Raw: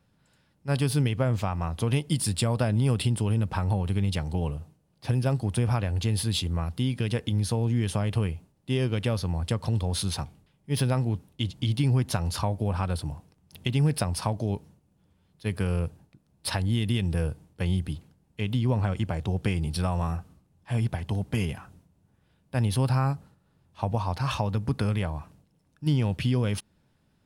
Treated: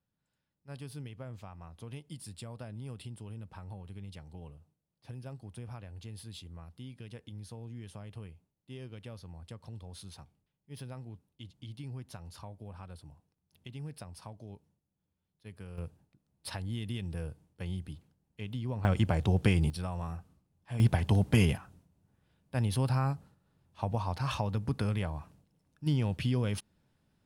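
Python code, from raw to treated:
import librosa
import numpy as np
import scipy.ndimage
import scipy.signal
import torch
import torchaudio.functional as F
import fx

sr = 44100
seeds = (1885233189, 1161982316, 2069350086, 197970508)

y = fx.gain(x, sr, db=fx.steps((0.0, -19.0), (15.78, -11.0), (18.85, 1.0), (19.7, -9.5), (20.8, 3.0), (21.57, -5.0)))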